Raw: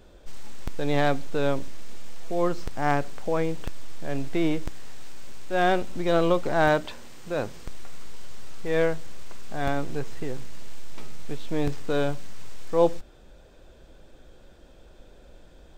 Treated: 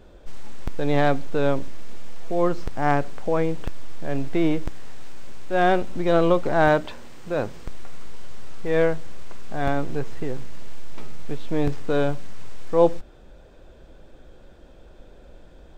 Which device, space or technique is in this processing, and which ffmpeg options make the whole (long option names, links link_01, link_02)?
behind a face mask: -af "highshelf=frequency=3100:gain=-7.5,volume=3.5dB"